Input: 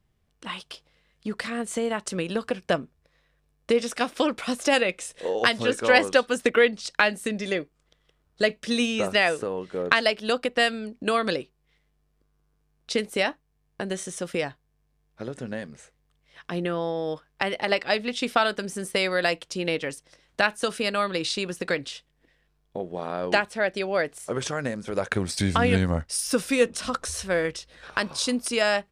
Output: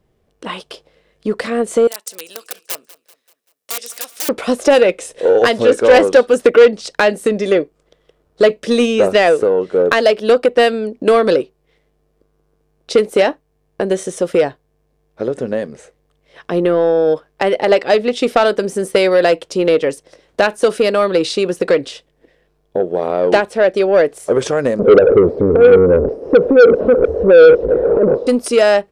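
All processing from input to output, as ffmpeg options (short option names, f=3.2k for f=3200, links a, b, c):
-filter_complex "[0:a]asettb=1/sr,asplit=3[a][b][c];[a]atrim=end=1.874[d];[b]atrim=start=1.87:end=4.29,asetpts=PTS-STARTPTS,afade=t=in:d=0.004:c=qsin,afade=t=out:st=2.416:d=0.004:c=qsin,aeval=exprs='(mod(7.08*val(0)+1,2)-1)/7.08':c=same,aderivative,aecho=1:1:193|386|579|772:0.1|0.051|0.026|0.0133,atrim=end_sample=106722[e];[c]atrim=start=4.286[f];[d][e]acrossfade=d=0.004:c1=hsin:c2=qsin[g];[g][f]acrossfade=d=0.004:c1=qsin:c2=hsin,asettb=1/sr,asplit=3[h][i][j];[h]atrim=end=24.794[k];[i]atrim=start=24.79:end=28.27,asetpts=PTS-STARTPTS,afade=t=in:d=0.004:c=qsin,afade=t=out:st=3.476:d=0.004:c=qsin,aeval=exprs='val(0)+0.5*0.0668*sgn(val(0))':c=same,acompressor=threshold=-22dB:ratio=8:attack=3.2:release=140:knee=1:detection=peak,lowpass=f=460:t=q:w=4.6[l];[j]atrim=start=28.266[m];[k][l]acrossfade=d=0.004:c1=hsin:c2=qsin[n];[n][m]acrossfade=d=0.004:c1=qsin:c2=hsin,equalizer=f=460:t=o:w=1.6:g=13,acontrast=70,volume=-1.5dB"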